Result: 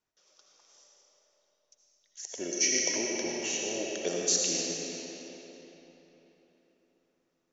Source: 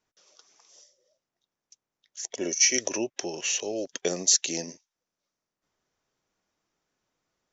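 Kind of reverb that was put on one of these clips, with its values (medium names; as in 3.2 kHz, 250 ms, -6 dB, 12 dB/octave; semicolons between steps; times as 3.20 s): algorithmic reverb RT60 3.9 s, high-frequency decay 0.75×, pre-delay 40 ms, DRR -2.5 dB; trim -6.5 dB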